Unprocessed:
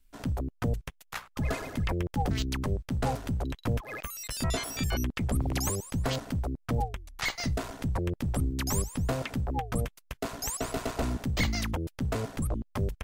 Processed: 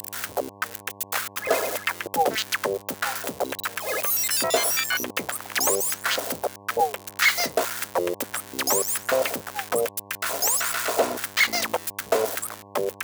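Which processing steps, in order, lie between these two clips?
switching spikes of -30 dBFS; LFO high-pass square 1.7 Hz 510–1500 Hz; buzz 100 Hz, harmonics 11, -55 dBFS -1 dB/oct; gain +8 dB

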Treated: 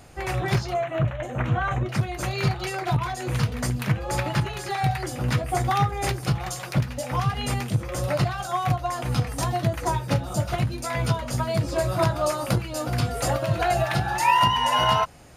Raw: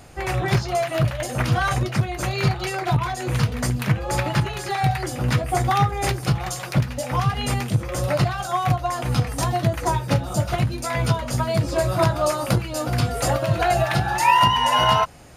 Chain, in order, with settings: 0.74–1.89 running mean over 9 samples; gain -3 dB

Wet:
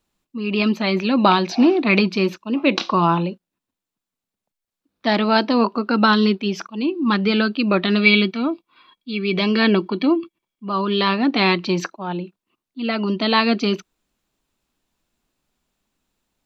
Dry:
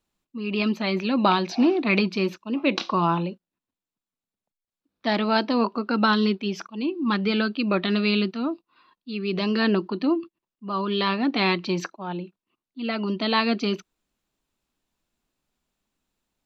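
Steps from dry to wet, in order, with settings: 8.01–10.69 small resonant body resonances 2300/3300 Hz, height 17 dB; gain +5 dB

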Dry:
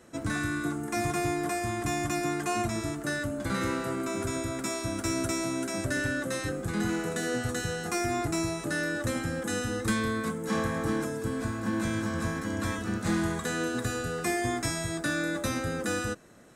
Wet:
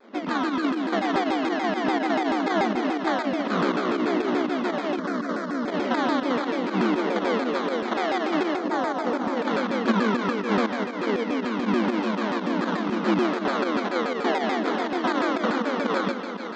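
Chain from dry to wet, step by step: sample-and-hold 17×; air absorption 220 m; 10.67–11.29 negative-ratio compressor -34 dBFS, ratio -0.5; on a send: multi-head echo 0.166 s, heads all three, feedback 61%, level -14 dB; on the sum: pump 121 bpm, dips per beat 2, -10 dB, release 69 ms; notches 50/100/150/200/250/300/350 Hz; FFT band-pass 190–7500 Hz; 4.99–5.68 fixed phaser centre 540 Hz, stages 8; 8.56–9.37 bell 2900 Hz -7.5 dB 1.4 oct; shaped vibrato saw down 6.9 Hz, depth 250 cents; gain +8 dB

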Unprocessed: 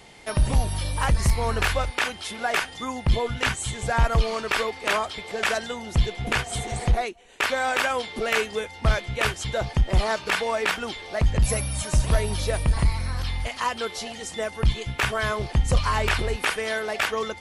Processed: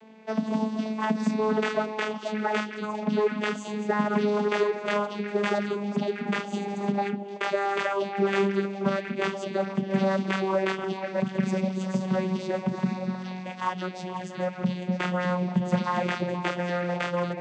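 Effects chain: vocoder on a gliding note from A3, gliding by -4 st; on a send: delay with a stepping band-pass 0.24 s, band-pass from 270 Hz, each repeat 1.4 oct, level -2.5 dB; on the sum: mismatched tape noise reduction decoder only

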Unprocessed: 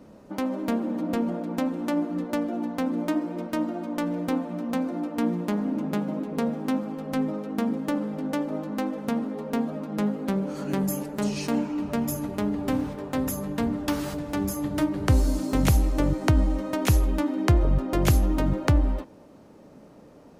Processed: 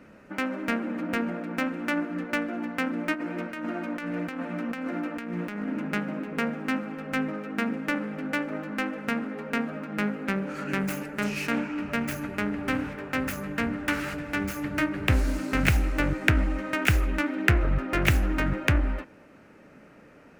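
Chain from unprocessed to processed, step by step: self-modulated delay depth 0.3 ms; band shelf 1900 Hz +12.5 dB 1.3 oct; 3.13–5.68 negative-ratio compressor -29 dBFS, ratio -1; gain -3 dB

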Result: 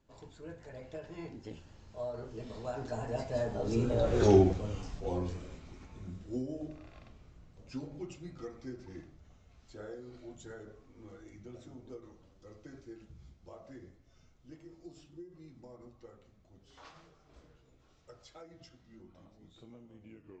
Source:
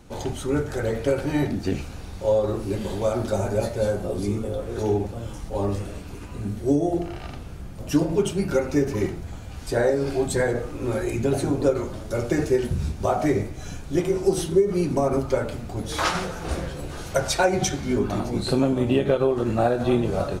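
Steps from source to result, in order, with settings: tape stop at the end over 1.55 s; Doppler pass-by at 4.21, 42 m/s, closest 9.4 m; elliptic low-pass 7200 Hz, stop band 40 dB; gain +3.5 dB

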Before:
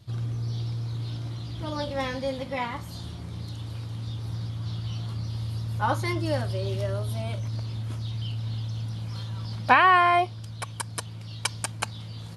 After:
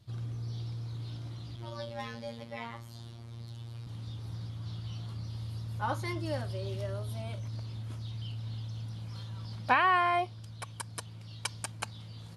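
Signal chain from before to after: 1.56–3.87 robotiser 116 Hz; gain -7.5 dB

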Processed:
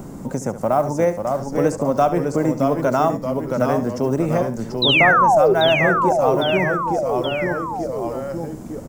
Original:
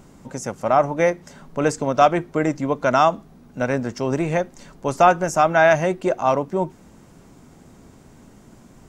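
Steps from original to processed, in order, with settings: block floating point 7-bit; bell 3000 Hz -12.5 dB 2.6 oct; painted sound fall, 4.82–5.54, 360–4100 Hz -14 dBFS; in parallel at +0.5 dB: compressor, threshold -32 dBFS, peak gain reduction 20.5 dB; on the sum: echoes that change speed 0.502 s, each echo -1 st, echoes 3, each echo -6 dB; on a send: echo 70 ms -13 dB; on the sum: three-band squash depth 40%

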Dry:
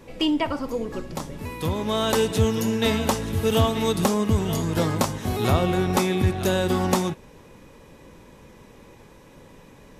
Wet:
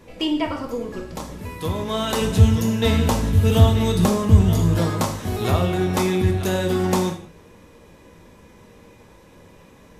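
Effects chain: 2.21–4.77 low shelf 170 Hz +11.5 dB; non-linear reverb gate 0.21 s falling, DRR 3 dB; gain -1.5 dB

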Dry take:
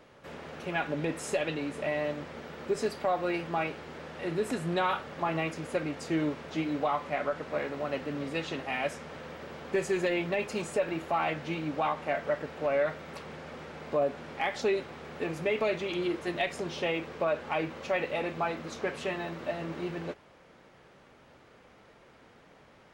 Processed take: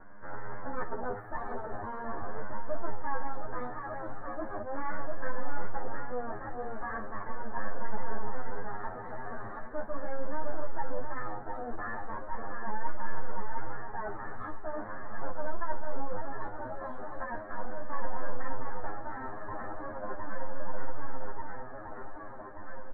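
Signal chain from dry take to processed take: bin magnitudes rounded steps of 30 dB; half-wave rectifier; doubler 15 ms -6.5 dB; on a send: swung echo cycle 1.184 s, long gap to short 1.5:1, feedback 53%, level -7 dB; on the sum: wow and flutter 20 cents; pitch shift +7.5 st; elliptic low-pass 1700 Hz, stop band 40 dB; reverse; compressor 6:1, threshold -38 dBFS, peak gain reduction 16 dB; reverse; low shelf 71 Hz +8.5 dB; endless flanger 11.2 ms -0.39 Hz; gain +11 dB

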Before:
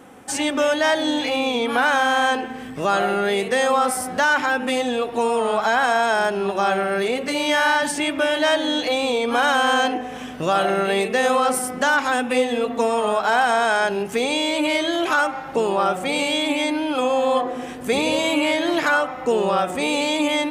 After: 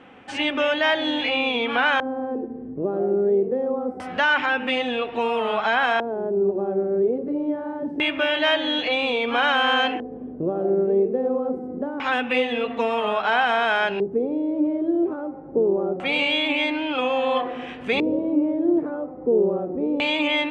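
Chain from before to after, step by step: LFO low-pass square 0.25 Hz 390–2800 Hz; gain -3.5 dB

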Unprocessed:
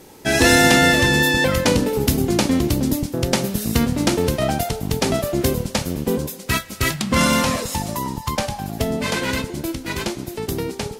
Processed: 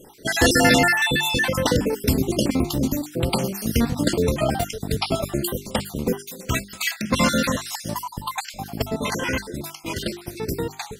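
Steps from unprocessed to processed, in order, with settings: random spectral dropouts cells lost 51%; notches 50/100/150/200/250/300/350/400 Hz

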